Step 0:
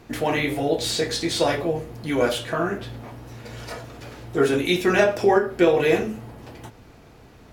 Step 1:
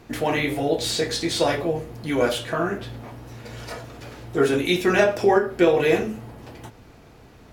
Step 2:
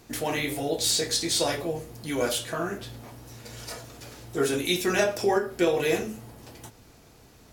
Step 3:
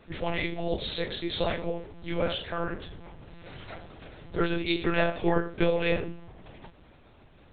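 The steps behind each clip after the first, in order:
no audible change
tone controls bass 0 dB, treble +12 dB; trim -6 dB
monotone LPC vocoder at 8 kHz 170 Hz; trim -1 dB

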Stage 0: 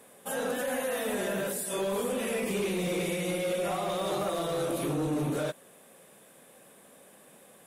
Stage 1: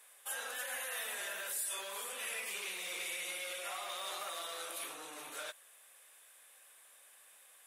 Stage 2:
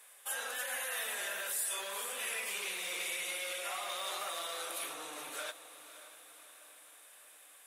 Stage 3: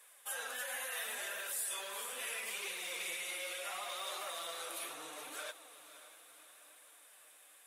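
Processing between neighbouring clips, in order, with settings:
high-pass 1.4 kHz 12 dB/octave; trim -2 dB
echo that smears into a reverb 556 ms, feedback 55%, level -14 dB; trim +2.5 dB
flange 0.73 Hz, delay 1.6 ms, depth 7.8 ms, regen +49%; trim +1 dB

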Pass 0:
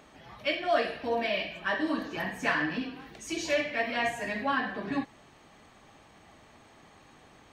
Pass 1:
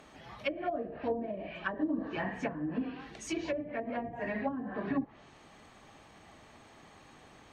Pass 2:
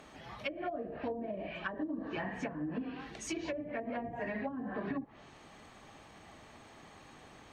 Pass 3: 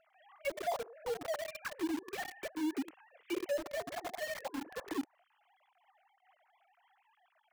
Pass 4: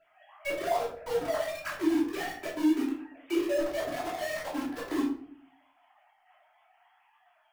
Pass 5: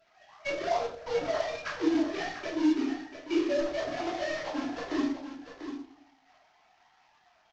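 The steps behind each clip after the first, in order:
low-pass that closes with the level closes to 340 Hz, closed at -25 dBFS
compression 6:1, threshold -35 dBFS, peak gain reduction 8.5 dB; trim +1 dB
formants replaced by sine waves; in parallel at -5 dB: companded quantiser 2-bit; on the sum: trim -7 dB
reverberation RT60 0.55 s, pre-delay 3 ms, DRR -10.5 dB; trim -4.5 dB
CVSD coder 32 kbps; delay 693 ms -9.5 dB

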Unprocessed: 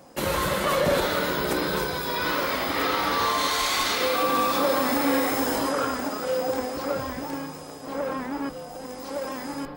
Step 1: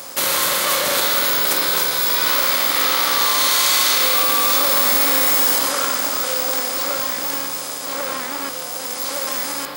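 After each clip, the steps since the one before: spectral levelling over time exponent 0.6; tilt EQ +4 dB/octave; trim -1 dB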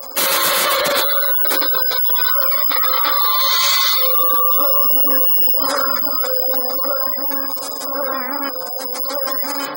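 spectral gate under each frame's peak -15 dB strong; saturation -14 dBFS, distortion -19 dB; trim +6 dB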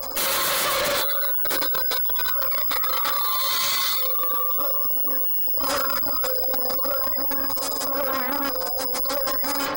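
valve stage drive 25 dB, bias 0.6; trim +4 dB

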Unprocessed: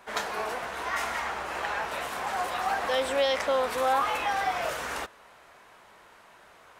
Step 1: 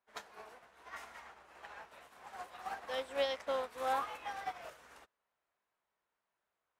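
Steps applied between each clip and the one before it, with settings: upward expansion 2.5:1, over -40 dBFS; trim -7 dB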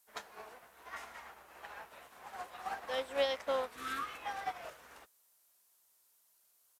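added noise violet -68 dBFS; resampled via 32 kHz; spectral replace 3.78–4.15 s, 430–1100 Hz; trim +2 dB

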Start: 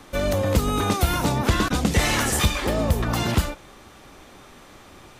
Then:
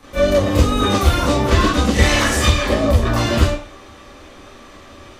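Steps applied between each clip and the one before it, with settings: reverberation RT60 0.35 s, pre-delay 26 ms, DRR -10 dB; trim -4.5 dB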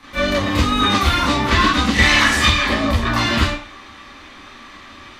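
ten-band graphic EQ 250 Hz +6 dB, 500 Hz -6 dB, 1 kHz +7 dB, 2 kHz +9 dB, 4 kHz +8 dB; trim -5 dB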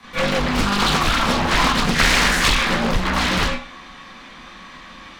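one-sided wavefolder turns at -15 dBFS; frequency shift -46 Hz; loudspeaker Doppler distortion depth 0.67 ms

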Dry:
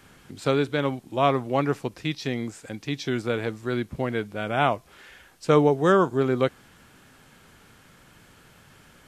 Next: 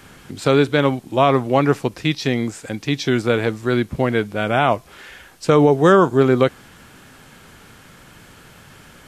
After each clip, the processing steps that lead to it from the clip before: loudness maximiser +10.5 dB; trim -2 dB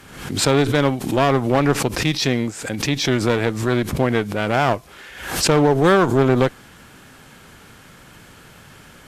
one-sided clip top -20.5 dBFS, bottom -5 dBFS; swell ahead of each attack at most 71 dB/s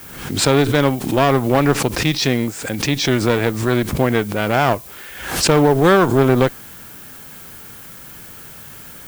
added noise violet -41 dBFS; trim +2 dB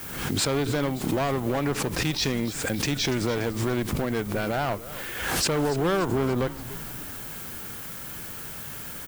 compression 2.5:1, threshold -25 dBFS, peak gain reduction 11.5 dB; hard clipper -18 dBFS, distortion -15 dB; frequency-shifting echo 288 ms, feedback 58%, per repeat -120 Hz, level -15 dB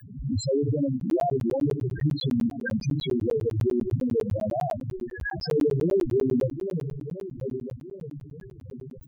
backward echo that repeats 631 ms, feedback 58%, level -8.5 dB; loudest bins only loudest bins 2; crackling interface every 0.10 s, samples 512, zero, from 1.00 s; trim +7 dB

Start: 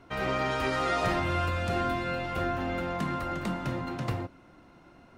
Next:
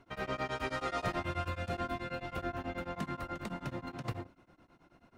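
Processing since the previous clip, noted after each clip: tremolo of two beating tones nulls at 9.3 Hz; trim -5 dB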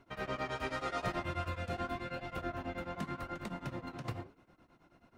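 flange 0.88 Hz, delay 4.6 ms, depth 9.3 ms, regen -82%; trim +3 dB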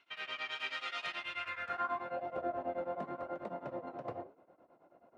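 band-pass sweep 2.9 kHz -> 590 Hz, 1.30–2.25 s; trim +8.5 dB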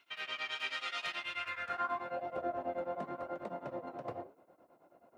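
treble shelf 6.2 kHz +9.5 dB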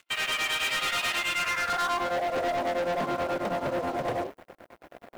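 waveshaping leveller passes 5

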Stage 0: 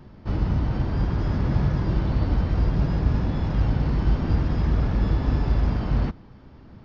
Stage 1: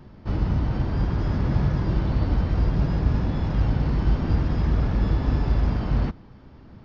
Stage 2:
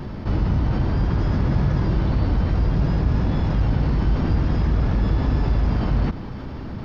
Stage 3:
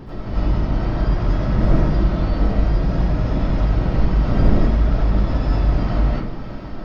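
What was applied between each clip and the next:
no audible change
level flattener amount 50%
wind noise 200 Hz -27 dBFS; reverberation RT60 0.45 s, pre-delay 50 ms, DRR -9 dB; trim -7 dB

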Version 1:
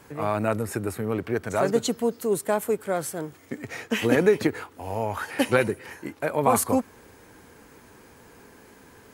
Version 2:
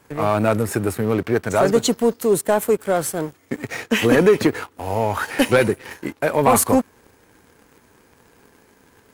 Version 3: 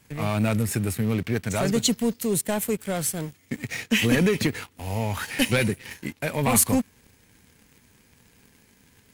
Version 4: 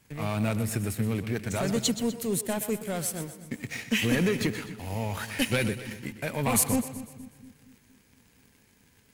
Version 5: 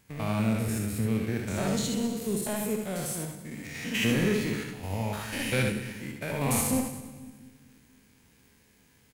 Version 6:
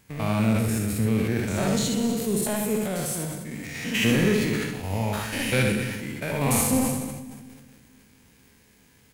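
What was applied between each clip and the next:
waveshaping leveller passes 2
high-order bell 680 Hz -10.5 dB 2.7 oct
two-band feedback delay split 300 Hz, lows 234 ms, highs 124 ms, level -12 dB; trim -4.5 dB
spectrogram pixelated in time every 100 ms; early reflections 63 ms -7 dB, 77 ms -7.5 dB
on a send at -19 dB: reverberation RT60 2.2 s, pre-delay 50 ms; on the sum: decay stretcher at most 39 dB/s; trim +4 dB

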